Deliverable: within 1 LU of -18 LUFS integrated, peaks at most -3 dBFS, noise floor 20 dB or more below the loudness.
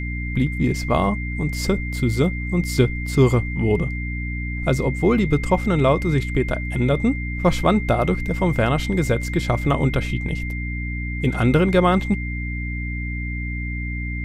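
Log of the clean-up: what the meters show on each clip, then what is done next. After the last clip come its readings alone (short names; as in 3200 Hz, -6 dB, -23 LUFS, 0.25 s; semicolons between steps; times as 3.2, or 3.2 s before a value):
hum 60 Hz; harmonics up to 300 Hz; hum level -24 dBFS; steady tone 2100 Hz; tone level -31 dBFS; loudness -21.5 LUFS; peak -3.5 dBFS; loudness target -18.0 LUFS
-> notches 60/120/180/240/300 Hz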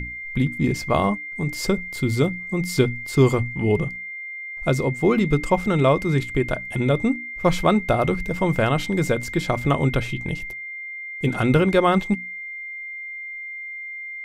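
hum none; steady tone 2100 Hz; tone level -31 dBFS
-> notch 2100 Hz, Q 30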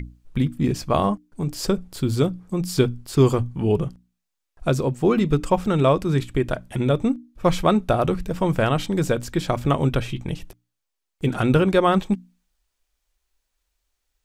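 steady tone none; loudness -22.5 LUFS; peak -4.5 dBFS; loudness target -18.0 LUFS
-> gain +4.5 dB; limiter -3 dBFS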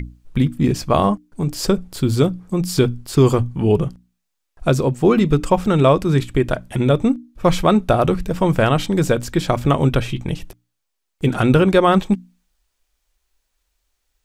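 loudness -18.0 LUFS; peak -3.0 dBFS; noise floor -76 dBFS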